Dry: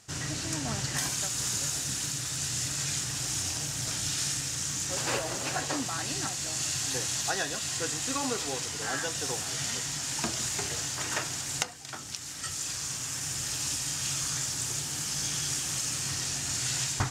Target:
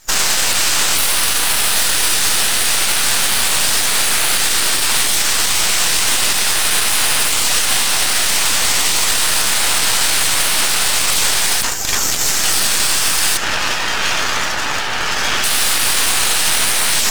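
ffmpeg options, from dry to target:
-filter_complex "[0:a]asettb=1/sr,asplit=3[s0][s1][s2];[s0]atrim=end=13.374[s3];[s1]atrim=start=13.37:end=15.44,asetpts=PTS-STARTPTS,afade=t=in:d=0.004:c=qsin,afade=t=out:st=2.066:d=0.004:c=qsin,lowpass=2200[s4];[s2]atrim=start=15.436[s5];[s3][s4]acrossfade=d=0.004:c1=hsin:c2=qsin[s6];[s6][s5]acrossfade=d=0.004:c1=qsin:c2=hsin,afftdn=nr=21:nf=-51,afftfilt=real='re*lt(hypot(re,im),0.0251)':imag='im*lt(hypot(re,im),0.0251)':win_size=1024:overlap=0.75,highpass=780,aeval=exprs='max(val(0),0)':c=same,alimiter=level_in=50.1:limit=0.891:release=50:level=0:latency=1,volume=0.891"

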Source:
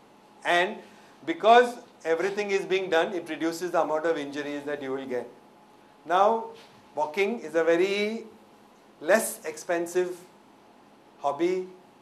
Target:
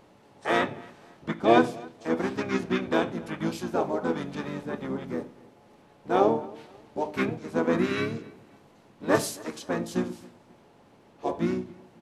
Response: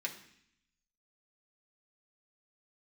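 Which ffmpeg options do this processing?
-filter_complex "[0:a]asplit=4[s0][s1][s2][s3];[s1]asetrate=22050,aresample=44100,atempo=2,volume=0.794[s4];[s2]asetrate=29433,aresample=44100,atempo=1.49831,volume=0.891[s5];[s3]asetrate=37084,aresample=44100,atempo=1.18921,volume=0.398[s6];[s0][s4][s5][s6]amix=inputs=4:normalize=0,asplit=2[s7][s8];[s8]adelay=266,lowpass=f=4500:p=1,volume=0.0708,asplit=2[s9][s10];[s10]adelay=266,lowpass=f=4500:p=1,volume=0.36[s11];[s7][s9][s11]amix=inputs=3:normalize=0,volume=0.531"

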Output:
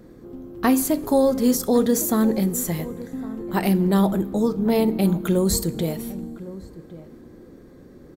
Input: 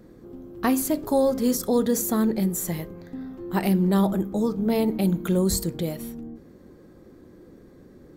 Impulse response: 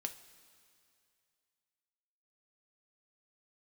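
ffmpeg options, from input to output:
-filter_complex "[0:a]asplit=2[s0][s1];[s1]adelay=1108,volume=0.158,highshelf=f=4000:g=-24.9[s2];[s0][s2]amix=inputs=2:normalize=0,asplit=2[s3][s4];[1:a]atrim=start_sample=2205[s5];[s4][s5]afir=irnorm=-1:irlink=0,volume=0.531[s6];[s3][s6]amix=inputs=2:normalize=0"

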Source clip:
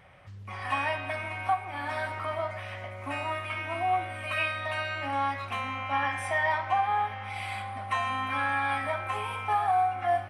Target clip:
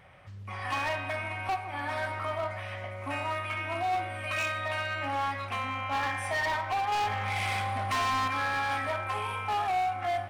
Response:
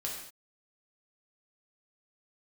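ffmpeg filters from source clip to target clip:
-filter_complex "[0:a]asettb=1/sr,asplit=3[s0][s1][s2];[s0]atrim=end=6.924[s3];[s1]atrim=start=6.92:end=8.28,asetpts=PTS-STARTPTS,afade=t=in:d=0.004:c=qsin,afade=t=out:st=1.356:d=0.004:c=qsin,acontrast=71[s4];[s2]atrim=start=8.276[s5];[s3][s4]acrossfade=d=0.004:c1=hsin:c2=qsin[s6];[s6][s5]acrossfade=d=0.004:c1=qsin:c2=hsin,asoftclip=type=hard:threshold=0.0473,asplit=2[s7][s8];[1:a]atrim=start_sample=2205,adelay=45[s9];[s8][s9]afir=irnorm=-1:irlink=0,volume=0.141[s10];[s7][s10]amix=inputs=2:normalize=0"

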